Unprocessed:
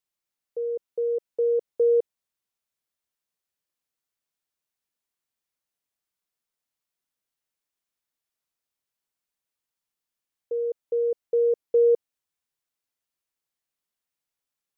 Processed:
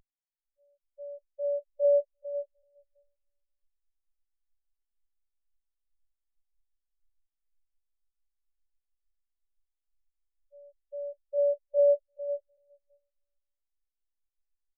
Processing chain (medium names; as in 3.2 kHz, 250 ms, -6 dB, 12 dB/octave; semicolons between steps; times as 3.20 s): gate -26 dBFS, range -35 dB; peaking EQ 410 Hz -14 dB 0.88 oct; peak limiter -27.5 dBFS, peak gain reduction 4 dB; upward compressor, threshold -27 dBFS; added noise brown -57 dBFS; robot voice 286 Hz; on a send: bouncing-ball echo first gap 450 ms, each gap 0.85×, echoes 5; on the sum: spectral contrast expander 4:1; trim +6.5 dB